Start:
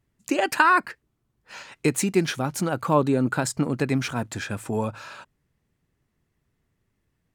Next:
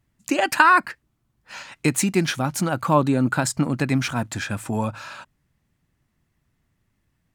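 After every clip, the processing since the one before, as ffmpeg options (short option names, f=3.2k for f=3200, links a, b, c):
-af "equalizer=f=430:t=o:w=0.5:g=-8,volume=3.5dB"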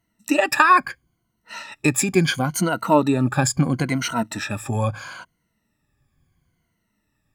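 -af "afftfilt=real='re*pow(10,16/40*sin(2*PI*(1.9*log(max(b,1)*sr/1024/100)/log(2)-(-0.74)*(pts-256)/sr)))':imag='im*pow(10,16/40*sin(2*PI*(1.9*log(max(b,1)*sr/1024/100)/log(2)-(-0.74)*(pts-256)/sr)))':win_size=1024:overlap=0.75,volume=-1dB"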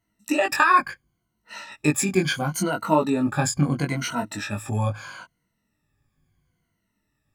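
-af "flanger=delay=19:depth=2.2:speed=0.65"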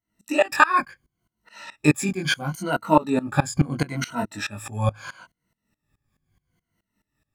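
-af "aeval=exprs='val(0)*pow(10,-21*if(lt(mod(-4.7*n/s,1),2*abs(-4.7)/1000),1-mod(-4.7*n/s,1)/(2*abs(-4.7)/1000),(mod(-4.7*n/s,1)-2*abs(-4.7)/1000)/(1-2*abs(-4.7)/1000))/20)':c=same,volume=6dB"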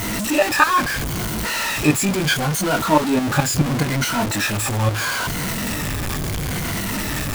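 -af "aeval=exprs='val(0)+0.5*0.15*sgn(val(0))':c=same,volume=-1dB"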